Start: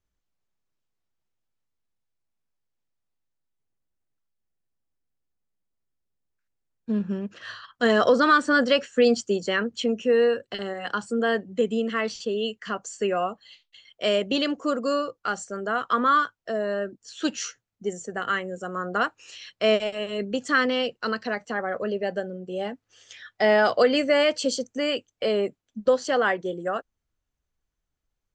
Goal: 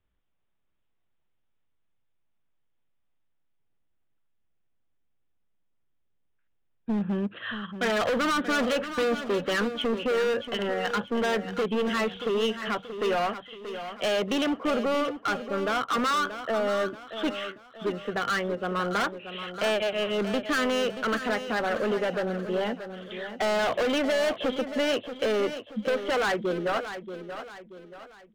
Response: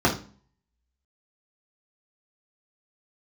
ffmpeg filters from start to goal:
-filter_complex "[0:a]acrossover=split=440|2100[a][b][c];[a]acompressor=threshold=-26dB:ratio=4[d];[b]acompressor=threshold=-21dB:ratio=4[e];[c]acompressor=threshold=-33dB:ratio=4[f];[d][e][f]amix=inputs=3:normalize=0,aresample=8000,aresample=44100,volume=27.5dB,asoftclip=hard,volume=-27.5dB,asplit=2[g][h];[h]aecho=0:1:631|1262|1893|2524:0.299|0.122|0.0502|0.0206[i];[g][i]amix=inputs=2:normalize=0,volume=4dB"

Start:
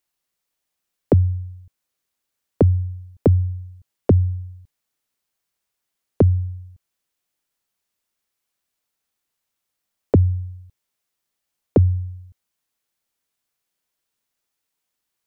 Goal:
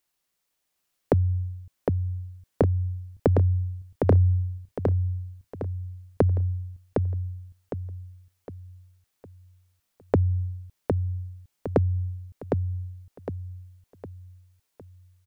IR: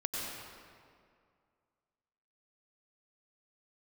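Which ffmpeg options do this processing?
-filter_complex "[0:a]acompressor=threshold=-20dB:ratio=6,asplit=2[a][b];[b]aecho=0:1:759|1518|2277|3036|3795:0.631|0.252|0.101|0.0404|0.0162[c];[a][c]amix=inputs=2:normalize=0,volume=1.5dB"

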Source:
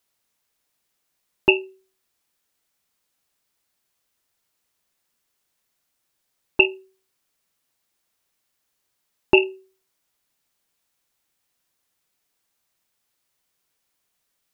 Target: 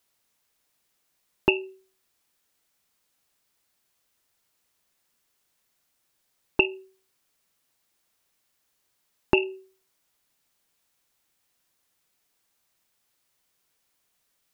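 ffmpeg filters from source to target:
-af "acompressor=threshold=-19dB:ratio=6,volume=1.5dB"

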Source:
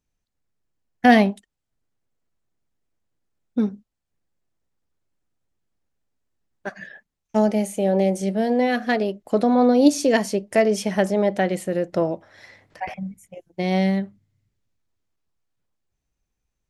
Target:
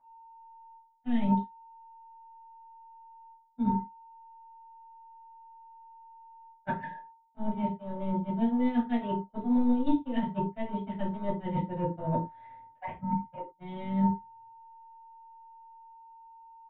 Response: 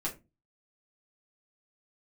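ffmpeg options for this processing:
-filter_complex "[0:a]asplit=2[a][b];[b]asoftclip=type=hard:threshold=-14dB,volume=-7dB[c];[a][c]amix=inputs=2:normalize=0,lowshelf=f=480:g=7,acrossover=split=180|3000[d][e][f];[e]acompressor=threshold=-25dB:ratio=6[g];[d][g][f]amix=inputs=3:normalize=0,aeval=exprs='val(0)+0.0398*sin(2*PI*910*n/s)':c=same,areverse,acompressor=threshold=-27dB:ratio=12,areverse,aresample=8000,aresample=44100,agate=range=-39dB:threshold=-28dB:ratio=16:detection=peak[h];[1:a]atrim=start_sample=2205,afade=t=out:st=0.14:d=0.01,atrim=end_sample=6615,asetrate=33957,aresample=44100[i];[h][i]afir=irnorm=-1:irlink=0,volume=1.5dB"

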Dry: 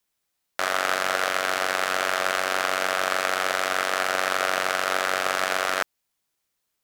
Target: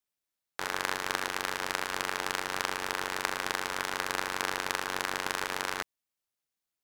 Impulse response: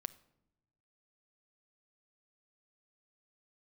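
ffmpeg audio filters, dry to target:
-af "aeval=exprs='val(0)*sin(2*PI*220*n/s)':c=same,aeval=exprs='0.631*(cos(1*acos(clip(val(0)/0.631,-1,1)))-cos(1*PI/2))+0.126*(cos(3*acos(clip(val(0)/0.631,-1,1)))-cos(3*PI/2))':c=same"

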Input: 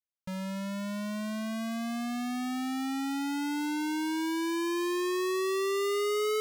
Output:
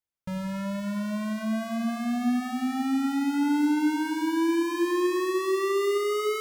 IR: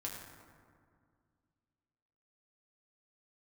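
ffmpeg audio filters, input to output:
-filter_complex "[0:a]asplit=2[a][b];[1:a]atrim=start_sample=2205,lowpass=2.9k,lowshelf=f=210:g=9.5[c];[b][c]afir=irnorm=-1:irlink=0,volume=-2dB[d];[a][d]amix=inputs=2:normalize=0"

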